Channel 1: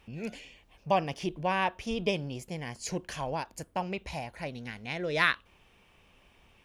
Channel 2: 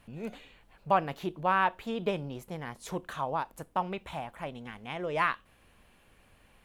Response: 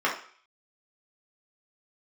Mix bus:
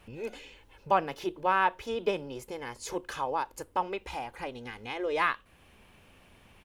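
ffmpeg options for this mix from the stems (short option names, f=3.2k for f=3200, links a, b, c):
-filter_complex "[0:a]acompressor=threshold=-41dB:ratio=2.5,highpass=f=61:w=0.5412,highpass=f=61:w=1.3066,lowshelf=f=430:g=4.5,volume=0dB[a];[1:a]adelay=2.4,volume=0.5dB[b];[a][b]amix=inputs=2:normalize=0"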